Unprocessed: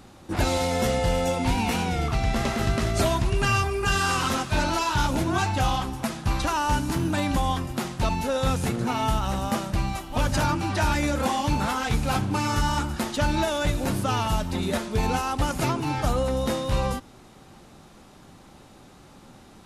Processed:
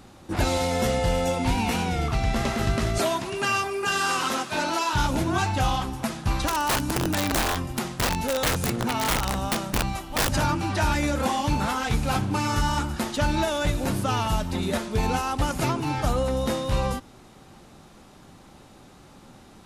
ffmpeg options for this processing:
-filter_complex "[0:a]asettb=1/sr,asplit=3[a][b][c];[a]atrim=end=2.984[d];[b]atrim=start=2.98:end=4.93,asetpts=PTS-STARTPTS,afade=t=in:d=0.004:c=qsin,afade=t=out:st=1.946:d=0.004:c=qsin,highpass=250[e];[c]atrim=start=4.926[f];[d][e]acrossfade=d=0.004:c1=hsin:c2=qsin[g];[g][f]acrossfade=d=0.004:c1=qsin:c2=hsin,asettb=1/sr,asplit=3[h][i][j];[h]atrim=end=6.484[k];[i]atrim=start=6.48:end=10.31,asetpts=PTS-STARTPTS,afade=t=in:d=0.004:c=qsin,afade=t=out:st=3.826:d=0.004:c=qsin,aeval=exprs='(mod(7.5*val(0)+1,2)-1)/7.5':c=same[l];[j]atrim=start=10.306[m];[k][l]acrossfade=d=0.004:c1=hsin:c2=qsin[n];[n][m]acrossfade=d=0.004:c1=qsin:c2=hsin"

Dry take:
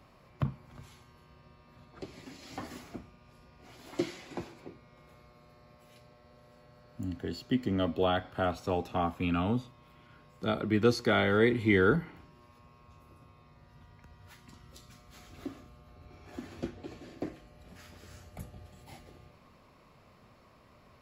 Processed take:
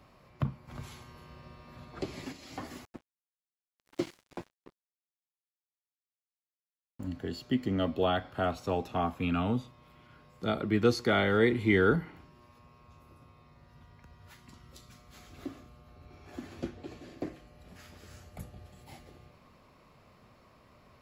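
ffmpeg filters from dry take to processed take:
-filter_complex "[0:a]asplit=3[a][b][c];[a]afade=t=out:st=0.67:d=0.02[d];[b]acontrast=80,afade=t=in:st=0.67:d=0.02,afade=t=out:st=2.31:d=0.02[e];[c]afade=t=in:st=2.31:d=0.02[f];[d][e][f]amix=inputs=3:normalize=0,asettb=1/sr,asplit=3[g][h][i];[g]atrim=end=2.854[j];[h]atrim=start=2.85:end=7.07,asetpts=PTS-STARTPTS,afade=t=in:d=0.004:c=qsin,afade=t=out:st=4.216:d=0.004:c=qsin,aeval=exprs='sgn(val(0))*max(abs(val(0))-0.00708,0)':c=same[k];[i]atrim=start=7.066[l];[j][k]acrossfade=d=0.004:c1=hsin:c2=qsin[m];[m][l]acrossfade=d=0.004:c1=qsin:c2=hsin"

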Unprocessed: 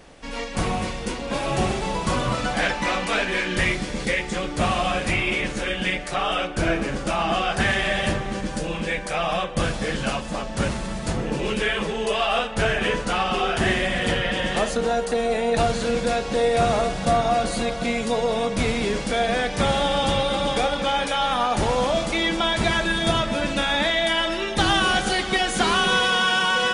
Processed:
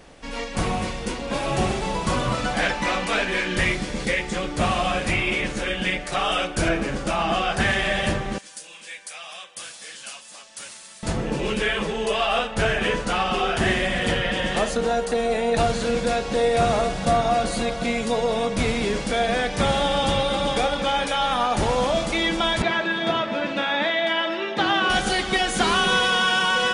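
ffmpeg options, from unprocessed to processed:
-filter_complex "[0:a]asettb=1/sr,asplit=3[a][b][c];[a]atrim=end=6.124[d];[b]atrim=start=6.12:end=6.69,asetpts=PTS-STARTPTS,afade=t=in:d=0.004:c=qsin,afade=t=out:st=0.566:d=0.004:c=qsin,highshelf=f=5k:g=8.5[e];[c]atrim=start=6.686[f];[d][e]acrossfade=d=0.004:c1=hsin:c2=qsin[g];[g][f]acrossfade=d=0.004:c1=qsin:c2=hsin,asettb=1/sr,asplit=3[h][i][j];[h]atrim=end=8.384[k];[i]atrim=start=8.38:end=11.03,asetpts=PTS-STARTPTS,afade=t=in:d=0.004:c=qsin,afade=t=out:st=2.646:d=0.004:c=qsin,aderivative[l];[j]atrim=start=11.026[m];[k][l]acrossfade=d=0.004:c1=hsin:c2=qsin[n];[n][m]acrossfade=d=0.004:c1=qsin:c2=hsin,asettb=1/sr,asplit=3[o][p][q];[o]atrim=end=22.624[r];[p]atrim=start=22.62:end=24.9,asetpts=PTS-STARTPTS,afade=t=in:d=0.004:c=qsin,afade=t=out:st=2.276:d=0.004:c=qsin,highpass=230,lowpass=3.3k[s];[q]atrim=start=24.896[t];[r][s]acrossfade=d=0.004:c1=hsin:c2=qsin[u];[u][t]acrossfade=d=0.004:c1=qsin:c2=hsin"

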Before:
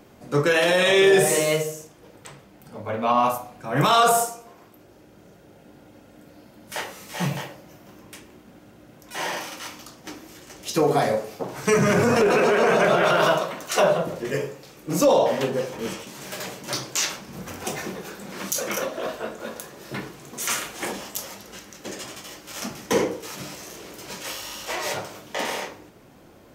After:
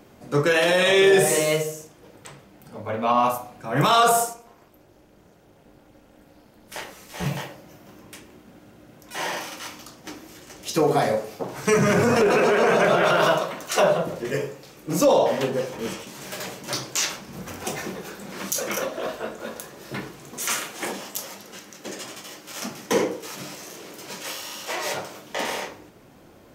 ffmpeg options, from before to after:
-filter_complex "[0:a]asettb=1/sr,asplit=3[a][b][c];[a]atrim=end=4.334[d];[b]atrim=start=4.33:end=7.26,asetpts=PTS-STARTPTS,afade=t=in:d=0.004:c=qsin,afade=t=out:st=2.926:d=0.004:c=qsin,tremolo=f=250:d=0.857[e];[c]atrim=start=7.256[f];[d][e]acrossfade=d=0.004:c1=hsin:c2=qsin[g];[g][f]acrossfade=d=0.004:c1=qsin:c2=hsin,asettb=1/sr,asplit=3[h][i][j];[h]atrim=end=20.374[k];[i]atrim=start=20.37:end=25.32,asetpts=PTS-STARTPTS,afade=t=in:d=0.004:c=qsin,afade=t=out:st=4.946:d=0.004:c=qsin,highpass=130[l];[j]atrim=start=25.316[m];[k][l]acrossfade=d=0.004:c1=hsin:c2=qsin[n];[n][m]acrossfade=d=0.004:c1=qsin:c2=hsin"

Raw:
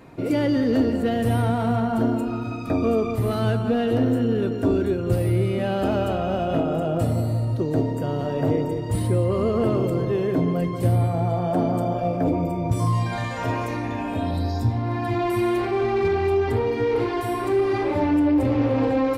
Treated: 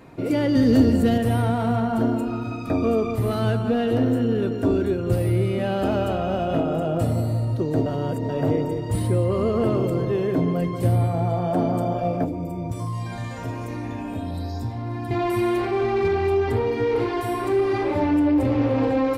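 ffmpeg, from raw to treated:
-filter_complex "[0:a]asettb=1/sr,asplit=3[a][b][c];[a]atrim=end=0.554[d];[b]atrim=start=0.55:end=1.18,asetpts=PTS-STARTPTS,afade=t=in:d=0.004:c=qsin,afade=t=out:st=0.626:d=0.004:c=qsin,bass=f=250:g=9,treble=f=4k:g=9[e];[c]atrim=start=1.176[f];[d][e]acrossfade=d=0.004:c1=hsin:c2=qsin[g];[g][f]acrossfade=d=0.004:c1=qsin:c2=hsin,asettb=1/sr,asplit=3[h][i][j];[h]atrim=end=12.244[k];[i]atrim=start=12.24:end=15.11,asetpts=PTS-STARTPTS,afade=t=in:d=0.004:c=qsin,afade=t=out:st=2.866:d=0.004:c=qsin,acrossover=split=370|5800[l][m][n];[l]acompressor=threshold=-27dB:ratio=4[o];[m]acompressor=threshold=-37dB:ratio=4[p];[n]acompressor=threshold=-51dB:ratio=4[q];[o][p][q]amix=inputs=3:normalize=0[r];[j]atrim=start=15.106[s];[k][r]acrossfade=d=0.004:c1=hsin:c2=qsin[t];[t][s]acrossfade=d=0.004:c1=qsin:c2=hsin,asplit=3[u][v][w];[u]atrim=end=7.862[x];[v]atrim=start=7.858:end=8.292,asetpts=PTS-STARTPTS,areverse[y];[w]atrim=start=8.288[z];[x][y]acrossfade=d=0.004:c1=hsin:c2=hsin[aa];[aa][z]acrossfade=d=0.004:c1=hsin:c2=hsin"

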